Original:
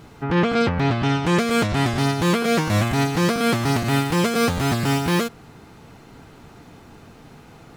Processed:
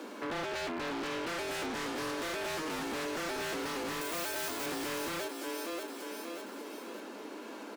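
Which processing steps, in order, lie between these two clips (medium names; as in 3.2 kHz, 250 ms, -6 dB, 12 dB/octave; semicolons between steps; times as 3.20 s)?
high-pass 41 Hz 12 dB/octave; frequency shift +160 Hz; 4.01–4.66 s: RIAA curve recording; feedback delay 586 ms, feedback 38%, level -12.5 dB; on a send at -14 dB: reverberation, pre-delay 4 ms; on the sum: compression 2:1, threshold -43 dBFS, peak gain reduction 16 dB; band-stop 1.9 kHz, Q 24; wavefolder -33 dBFS; bass shelf 160 Hz -4 dB; trim +2 dB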